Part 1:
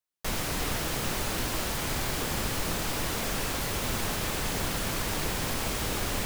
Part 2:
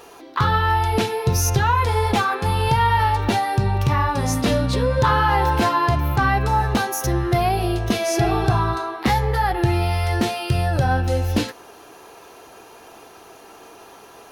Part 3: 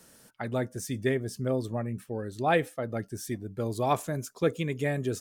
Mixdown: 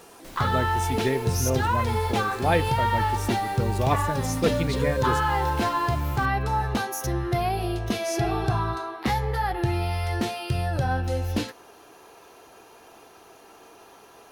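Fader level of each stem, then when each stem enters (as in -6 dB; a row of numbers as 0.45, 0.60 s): -14.5, -6.0, +1.5 dB; 0.00, 0.00, 0.00 s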